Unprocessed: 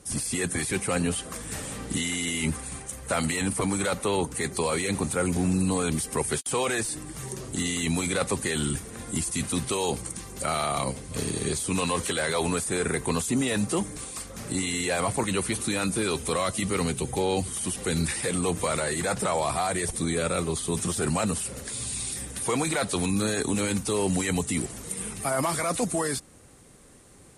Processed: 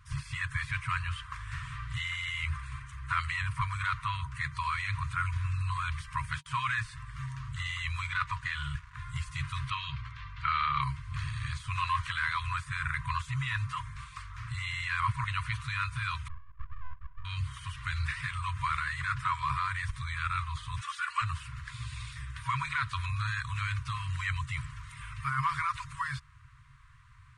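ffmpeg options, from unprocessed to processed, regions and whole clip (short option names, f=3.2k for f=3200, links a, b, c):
-filter_complex "[0:a]asettb=1/sr,asplit=3[a][b][c];[a]atrim=end=8.064[d];[b]atrim=start=8.06:end=8.95,asetpts=PTS-STARTPTS,afade=t=in:d=0.004:c=qsin,afade=t=out:st=0.886:d=0.004:c=qsin,equalizer=f=11k:w=2.1:g=-11.5,aecho=1:1:4.1:0.39,atrim=end_sample=39249,aeval=exprs='sgn(val(0))*max(abs(val(0))-0.0075,0)':c=same[e];[c]atrim=start=8.946[f];[d][e]acrossfade=d=0.004:c1=hsin:c2=qsin[g];[g][f]acrossfade=d=0.004:c1=qsin:c2=hsin,asettb=1/sr,asplit=3[h][i][j];[h]atrim=end=9.704[k];[i]atrim=start=9.7:end=10.82,asetpts=PTS-STARTPTS,afade=t=in:d=0.004:c=qsin,afade=t=out:st=1.116:d=0.004:c=qsin,lowpass=f=3.8k:w=0.5412,lowpass=f=3.8k:w=1.3066,aemphasis=mode=production:type=75fm[l];[j]atrim=start=10.816[m];[k][l]acrossfade=d=0.004:c1=hsin:c2=qsin[n];[n][m]acrossfade=d=0.004:c1=qsin:c2=hsin,asettb=1/sr,asplit=3[o][p][q];[o]atrim=end=16.284[r];[p]atrim=start=16.28:end=17.25,asetpts=PTS-STARTPTS,afade=t=in:d=0.004:c=qsin,afade=t=out:st=0.966:d=0.004:c=qsin,asuperpass=centerf=280:order=12:qfactor=2.4,aeval=exprs='abs(val(0))':c=same[s];[q]atrim=start=17.246[t];[r][s]acrossfade=d=0.004:c1=hsin:c2=qsin[u];[u][t]acrossfade=d=0.004:c1=qsin:c2=hsin,asettb=1/sr,asplit=3[v][w][x];[v]atrim=end=20.814[y];[w]atrim=start=20.81:end=21.22,asetpts=PTS-STARTPTS,afade=t=in:d=0.004:c=qsin,afade=t=out:st=0.406:d=0.004:c=qsin,highpass=880,aecho=1:1:3.5:0.95,atrim=end_sample=18081[z];[x]atrim=start=21.216[aa];[y][z]acrossfade=d=0.004:c1=hsin:c2=qsin[ab];[ab][aa]acrossfade=d=0.004:c1=qsin:c2=hsin,afftfilt=real='re*(1-between(b*sr/4096,150,950))':imag='im*(1-between(b*sr/4096,150,950))':win_size=4096:overlap=0.75,lowpass=2.1k,volume=2dB"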